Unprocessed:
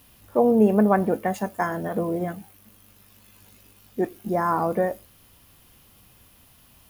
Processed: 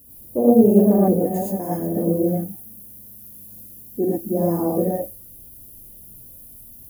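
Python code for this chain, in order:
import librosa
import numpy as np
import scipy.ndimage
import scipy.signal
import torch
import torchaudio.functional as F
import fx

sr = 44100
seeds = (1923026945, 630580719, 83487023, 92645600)

y = fx.curve_eq(x, sr, hz=(170.0, 300.0, 560.0, 1400.0, 6300.0, 15000.0), db=(0, 4, -2, -28, -6, 11))
y = fx.rev_gated(y, sr, seeds[0], gate_ms=140, shape='rising', drr_db=-7.0)
y = y * librosa.db_to_amplitude(-1.0)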